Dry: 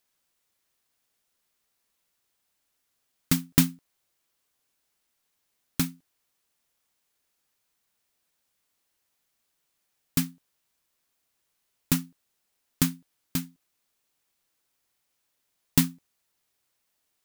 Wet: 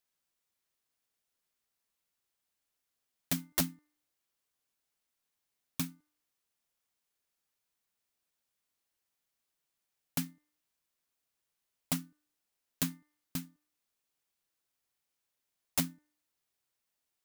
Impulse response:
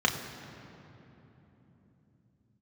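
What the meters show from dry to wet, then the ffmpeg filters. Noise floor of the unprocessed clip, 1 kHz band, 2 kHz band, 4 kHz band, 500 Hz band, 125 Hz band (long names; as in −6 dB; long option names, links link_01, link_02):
−77 dBFS, −5.0 dB, −7.5 dB, −7.0 dB, −4.0 dB, −11.5 dB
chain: -af "bandreject=frequency=298.4:width_type=h:width=4,bandreject=frequency=596.8:width_type=h:width=4,bandreject=frequency=895.2:width_type=h:width=4,bandreject=frequency=1193.6:width_type=h:width=4,bandreject=frequency=1492:width_type=h:width=4,bandreject=frequency=1790.4:width_type=h:width=4,bandreject=frequency=2088.8:width_type=h:width=4,aeval=exprs='(mod(3.98*val(0)+1,2)-1)/3.98':channel_layout=same,volume=-8.5dB"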